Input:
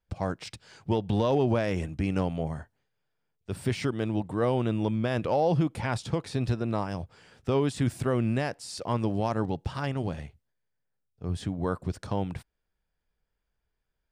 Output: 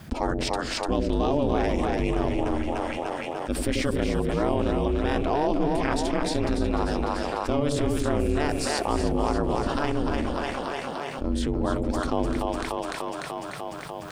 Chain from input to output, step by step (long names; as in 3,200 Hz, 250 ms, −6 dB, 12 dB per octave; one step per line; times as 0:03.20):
echo with a time of its own for lows and highs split 420 Hz, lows 88 ms, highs 296 ms, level −5 dB
ring modulation 150 Hz
envelope flattener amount 70%